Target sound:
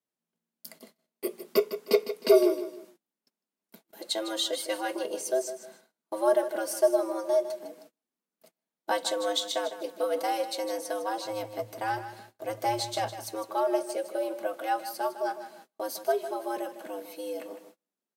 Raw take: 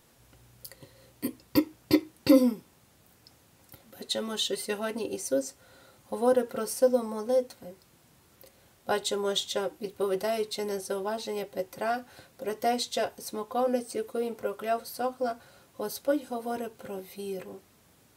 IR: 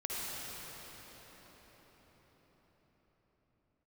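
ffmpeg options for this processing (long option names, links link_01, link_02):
-filter_complex "[0:a]asettb=1/sr,asplit=3[link_01][link_02][link_03];[link_01]atrim=end=11.244[link_04];[link_02]atrim=start=11.24:end=13.27,asetpts=PTS-STARTPTS,afade=type=in:duration=0.004:curve=qsin,afade=type=out:start_time=2.026:duration=0.004:curve=qsin,aeval=exprs='if(lt(val(0),0),0.708*val(0),val(0))':channel_layout=same[link_05];[link_03]atrim=start=13.266[link_06];[link_04][link_05]acrossfade=duration=0.004:curve1=hsin:curve2=qsin[link_07];[link_07][link_06]acrossfade=duration=0.004:curve1=qsin:curve2=hsin,afreqshift=110,asplit=2[link_08][link_09];[link_09]aecho=0:1:155|310|465:0.266|0.0798|0.0239[link_10];[link_08][link_10]amix=inputs=2:normalize=0,agate=range=-32dB:threshold=-51dB:ratio=16:detection=peak"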